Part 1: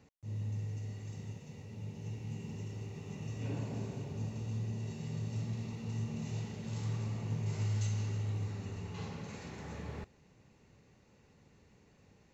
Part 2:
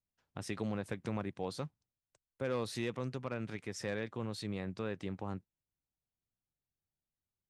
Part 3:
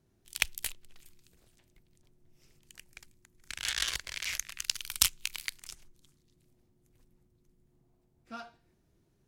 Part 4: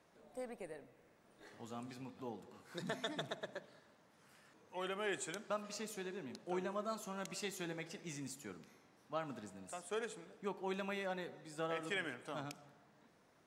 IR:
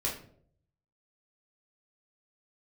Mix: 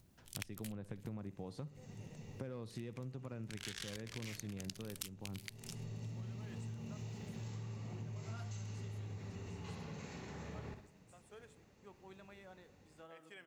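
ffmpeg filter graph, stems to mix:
-filter_complex "[0:a]adelay=700,volume=-2.5dB,asplit=2[link_01][link_02];[link_02]volume=-10dB[link_03];[1:a]equalizer=frequency=110:width=0.31:gain=12.5,acompressor=mode=upward:threshold=-46dB:ratio=2.5,volume=-4.5dB,asplit=3[link_04][link_05][link_06];[link_05]volume=-18.5dB[link_07];[2:a]volume=-2.5dB[link_08];[3:a]acrusher=bits=10:mix=0:aa=0.000001,adelay=1400,volume=-16dB[link_09];[link_06]apad=whole_len=574736[link_10];[link_01][link_10]sidechaincompress=threshold=-40dB:ratio=8:attack=38:release=826[link_11];[link_03][link_07]amix=inputs=2:normalize=0,aecho=0:1:61|122|183|244|305|366:1|0.43|0.185|0.0795|0.0342|0.0147[link_12];[link_11][link_04][link_08][link_09][link_12]amix=inputs=5:normalize=0,acompressor=threshold=-42dB:ratio=8"

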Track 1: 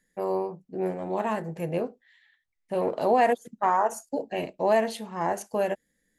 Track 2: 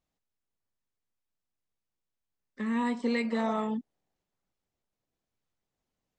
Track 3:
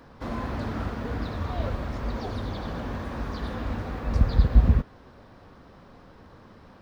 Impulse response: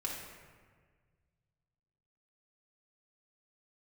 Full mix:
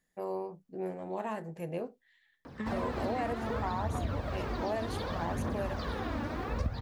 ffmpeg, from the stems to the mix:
-filter_complex "[0:a]volume=-7.5dB[link_01];[1:a]acompressor=threshold=-34dB:ratio=6,volume=0dB[link_02];[2:a]highpass=77,aphaser=in_gain=1:out_gain=1:delay=3.6:decay=0.52:speed=0.66:type=triangular,adelay=2450,volume=-1dB[link_03];[link_01][link_02][link_03]amix=inputs=3:normalize=0,acompressor=threshold=-30dB:ratio=4"

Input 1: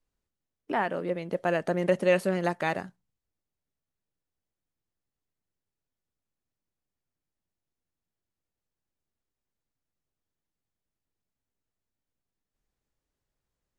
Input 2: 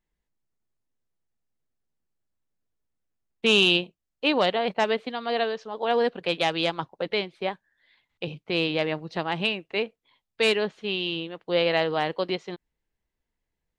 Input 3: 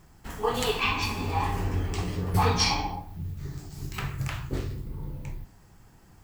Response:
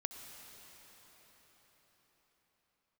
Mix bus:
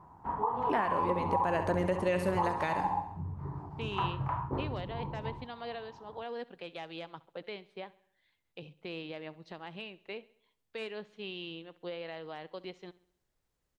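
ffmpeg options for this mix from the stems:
-filter_complex "[0:a]volume=2dB,asplit=2[link_01][link_02];[link_02]volume=-11dB[link_03];[1:a]acrossover=split=2900[link_04][link_05];[link_05]acompressor=threshold=-33dB:ratio=4:attack=1:release=60[link_06];[link_04][link_06]amix=inputs=2:normalize=0,alimiter=limit=-18.5dB:level=0:latency=1:release=317,adelay=350,volume=-12dB,asplit=2[link_07][link_08];[link_08]volume=-20.5dB[link_09];[2:a]highpass=81,acompressor=threshold=-28dB:ratio=6,lowpass=frequency=970:width_type=q:width=8.1,volume=-2dB[link_10];[link_03][link_09]amix=inputs=2:normalize=0,aecho=0:1:67|134|201|268|335|402|469:1|0.49|0.24|0.118|0.0576|0.0282|0.0138[link_11];[link_01][link_07][link_10][link_11]amix=inputs=4:normalize=0,alimiter=limit=-19.5dB:level=0:latency=1:release=491"

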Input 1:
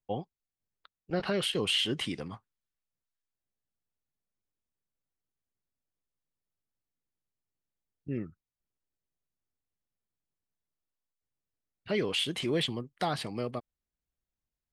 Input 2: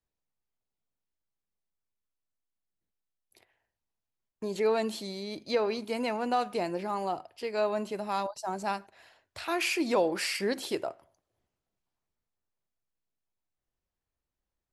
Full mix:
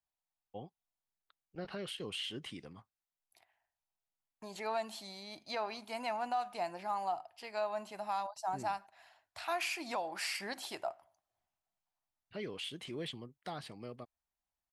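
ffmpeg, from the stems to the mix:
ffmpeg -i stem1.wav -i stem2.wav -filter_complex "[0:a]adelay=450,volume=-12dB[link_01];[1:a]lowshelf=frequency=580:width_type=q:width=3:gain=-7,volume=-5.5dB[link_02];[link_01][link_02]amix=inputs=2:normalize=0,alimiter=level_in=2dB:limit=-24dB:level=0:latency=1:release=302,volume=-2dB" out.wav

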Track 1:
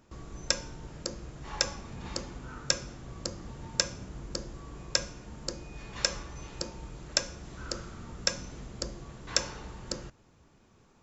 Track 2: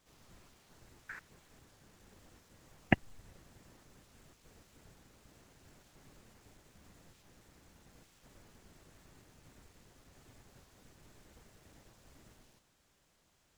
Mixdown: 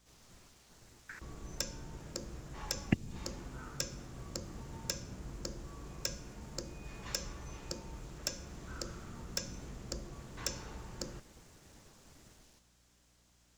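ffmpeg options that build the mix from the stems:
ffmpeg -i stem1.wav -i stem2.wav -filter_complex "[0:a]equalizer=frequency=4100:width=1.5:gain=-3,volume=20dB,asoftclip=hard,volume=-20dB,adelay=1100,volume=-3.5dB[link_01];[1:a]equalizer=frequency=6100:width=0.95:gain=6,aeval=exprs='val(0)+0.000282*(sin(2*PI*60*n/s)+sin(2*PI*2*60*n/s)/2+sin(2*PI*3*60*n/s)/3+sin(2*PI*4*60*n/s)/4+sin(2*PI*5*60*n/s)/5)':channel_layout=same,volume=0dB[link_02];[link_01][link_02]amix=inputs=2:normalize=0,acrossover=split=410|3000[link_03][link_04][link_05];[link_04]acompressor=threshold=-46dB:ratio=6[link_06];[link_03][link_06][link_05]amix=inputs=3:normalize=0" out.wav

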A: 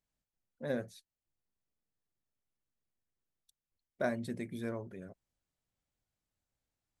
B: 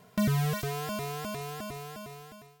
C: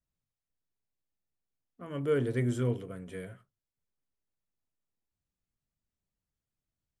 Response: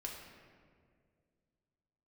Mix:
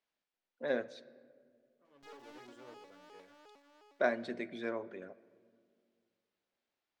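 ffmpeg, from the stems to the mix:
-filter_complex "[0:a]lowpass=3100,aemphasis=mode=production:type=75kf,volume=2dB,asplit=3[link_01][link_02][link_03];[link_02]volume=-12dB[link_04];[1:a]bandreject=frequency=141.6:width_type=h:width=4,bandreject=frequency=283.2:width_type=h:width=4,bandreject=frequency=424.8:width_type=h:width=4,bandreject=frequency=566.4:width_type=h:width=4,bandreject=frequency=708:width_type=h:width=4,bandreject=frequency=849.6:width_type=h:width=4,aeval=exprs='abs(val(0))':channel_layout=same,adelay=1850,volume=-18.5dB[link_05];[2:a]aeval=exprs='(tanh(56.2*val(0)+0.75)-tanh(0.75))/56.2':channel_layout=same,volume=-12dB[link_06];[link_03]apad=whole_len=308714[link_07];[link_06][link_07]sidechaincompress=threshold=-51dB:ratio=8:attack=33:release=1270[link_08];[3:a]atrim=start_sample=2205[link_09];[link_04][link_09]afir=irnorm=-1:irlink=0[link_10];[link_01][link_05][link_08][link_10]amix=inputs=4:normalize=0,acrossover=split=260 6600:gain=0.0708 1 0.112[link_11][link_12][link_13];[link_11][link_12][link_13]amix=inputs=3:normalize=0"

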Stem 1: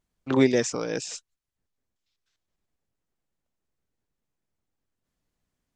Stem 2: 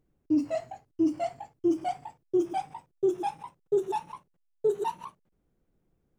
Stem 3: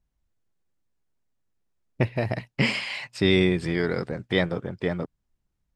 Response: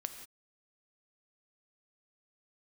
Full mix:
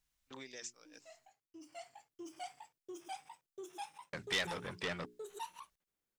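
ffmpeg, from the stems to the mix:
-filter_complex "[0:a]agate=range=-24dB:threshold=-26dB:ratio=16:detection=peak,acompressor=threshold=-23dB:ratio=6,volume=-18dB,asplit=2[link_01][link_02];[1:a]acompressor=threshold=-26dB:ratio=2,lowshelf=frequency=270:gain=-7.5,adelay=550,volume=-9.5dB[link_03];[2:a]volume=-2dB,asplit=3[link_04][link_05][link_06];[link_04]atrim=end=1.29,asetpts=PTS-STARTPTS,afade=type=out:start_time=1.286:duration=0.004:curve=hsin[link_07];[link_05]atrim=start=1.29:end=4.13,asetpts=PTS-STARTPTS,volume=0[link_08];[link_06]atrim=start=4.13,asetpts=PTS-STARTPTS,afade=type=in:duration=0.004:curve=hsin[link_09];[link_07][link_08][link_09]concat=n=3:v=0:a=1[link_10];[link_02]apad=whole_len=297010[link_11];[link_03][link_11]sidechaincompress=threshold=-58dB:ratio=10:attack=31:release=1330[link_12];[link_01][link_10]amix=inputs=2:normalize=0,bandreject=frequency=60:width_type=h:width=6,bandreject=frequency=120:width_type=h:width=6,bandreject=frequency=180:width_type=h:width=6,bandreject=frequency=240:width_type=h:width=6,bandreject=frequency=300:width_type=h:width=6,bandreject=frequency=360:width_type=h:width=6,bandreject=frequency=420:width_type=h:width=6,alimiter=limit=-16.5dB:level=0:latency=1:release=273,volume=0dB[link_13];[link_12][link_13]amix=inputs=2:normalize=0,asoftclip=type=tanh:threshold=-29.5dB,tiltshelf=frequency=1100:gain=-10"

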